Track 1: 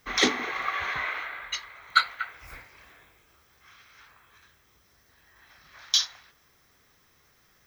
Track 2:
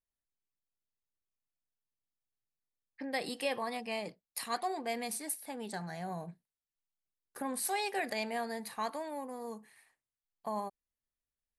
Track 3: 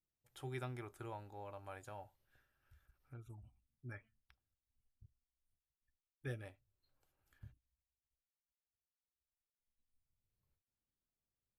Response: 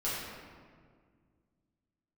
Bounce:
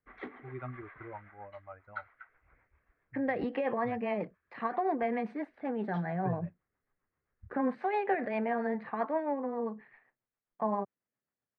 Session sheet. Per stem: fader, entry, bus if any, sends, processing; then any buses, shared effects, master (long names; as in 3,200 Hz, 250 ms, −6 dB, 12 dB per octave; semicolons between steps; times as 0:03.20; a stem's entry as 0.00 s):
−17.5 dB, 0.00 s, no bus, no send, no processing
0.0 dB, 0.15 s, bus A, no send, high-pass filter 110 Hz 24 dB per octave
−1.0 dB, 0.00 s, bus A, no send, spectral dynamics exaggerated over time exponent 2
bus A: 0.0 dB, automatic gain control gain up to 10 dB; brickwall limiter −18 dBFS, peak gain reduction 6.5 dB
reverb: not used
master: low-pass filter 1,900 Hz 24 dB per octave; rotating-speaker cabinet horn 7.5 Hz